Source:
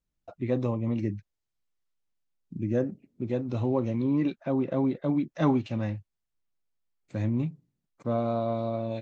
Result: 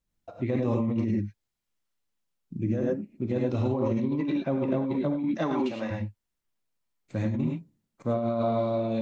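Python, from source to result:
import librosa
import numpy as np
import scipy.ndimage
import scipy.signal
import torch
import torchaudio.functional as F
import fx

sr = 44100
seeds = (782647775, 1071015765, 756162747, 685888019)

y = fx.highpass(x, sr, hz=fx.line((5.37, 190.0), (5.9, 520.0)), slope=12, at=(5.37, 5.9), fade=0.02)
y = fx.rev_gated(y, sr, seeds[0], gate_ms=130, shape='rising', drr_db=0.5)
y = fx.over_compress(y, sr, threshold_db=-26.0, ratio=-1.0)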